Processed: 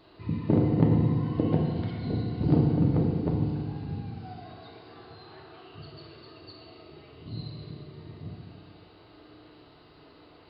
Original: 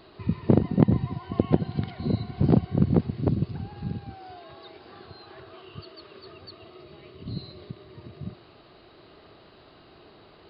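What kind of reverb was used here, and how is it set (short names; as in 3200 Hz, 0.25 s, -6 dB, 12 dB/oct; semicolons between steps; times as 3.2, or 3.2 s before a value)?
FDN reverb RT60 1.8 s, low-frequency decay 1.1×, high-frequency decay 0.9×, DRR -2.5 dB; gain -6.5 dB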